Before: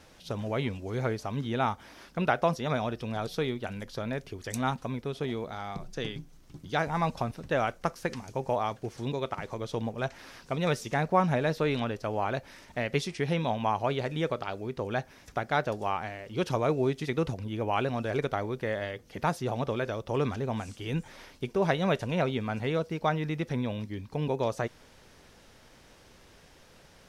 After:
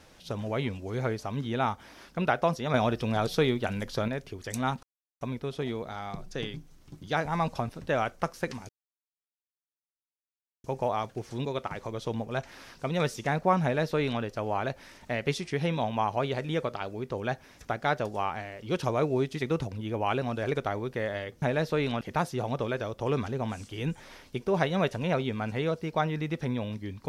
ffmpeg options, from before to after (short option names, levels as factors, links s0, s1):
-filter_complex "[0:a]asplit=7[s0][s1][s2][s3][s4][s5][s6];[s0]atrim=end=2.742[s7];[s1]atrim=start=2.738:end=4.082,asetpts=PTS-STARTPTS,volume=1.88[s8];[s2]atrim=start=4.078:end=4.83,asetpts=PTS-STARTPTS,afade=t=out:st=0.748:d=0.004:c=hsin,apad=pad_dur=0.38[s9];[s3]atrim=start=4.83:end=8.31,asetpts=PTS-STARTPTS,afade=t=in:d=0.004:c=hsin,afade=t=out:st=3.476:d=0.004:c=hsin,apad=pad_dur=1.95[s10];[s4]atrim=start=8.31:end=19.092,asetpts=PTS-STARTPTS,afade=t=in:d=0.004:c=hsin[s11];[s5]atrim=start=11.298:end=11.892[s12];[s6]atrim=start=19.088[s13];[s7][s8]acrossfade=d=0.004:c1=hsin:c2=hsin[s14];[s9][s10][s11]concat=n=3:v=0:a=1[s15];[s14][s15]acrossfade=d=0.004:c1=hsin:c2=hsin[s16];[s16][s12]acrossfade=d=0.004:c1=hsin:c2=hsin[s17];[s17][s13]acrossfade=d=0.004:c1=hsin:c2=hsin"